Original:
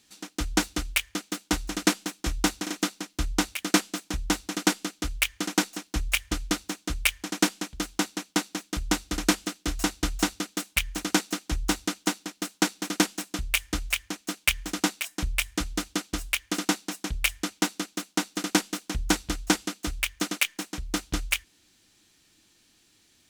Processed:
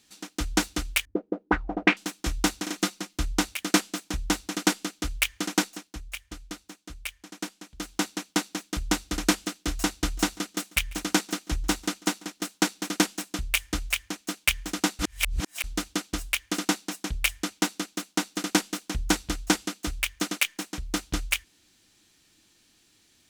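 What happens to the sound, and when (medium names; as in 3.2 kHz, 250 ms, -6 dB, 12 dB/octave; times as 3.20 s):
1.05–1.97 s: touch-sensitive low-pass 240–2400 Hz up, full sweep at -20 dBFS
2.77–3.17 s: comb 5.6 ms, depth 48%
5.59–8.04 s: dip -12 dB, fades 0.40 s
9.94–12.56 s: delay 143 ms -24 dB
14.99–15.64 s: reverse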